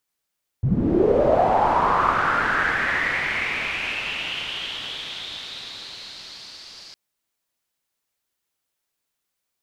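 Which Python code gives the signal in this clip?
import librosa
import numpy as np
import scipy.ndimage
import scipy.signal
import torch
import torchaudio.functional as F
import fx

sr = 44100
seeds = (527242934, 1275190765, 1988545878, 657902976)

y = fx.riser_noise(sr, seeds[0], length_s=6.31, colour='white', kind='lowpass', start_hz=110.0, end_hz=4800.0, q=5.3, swell_db=-38, law='linear')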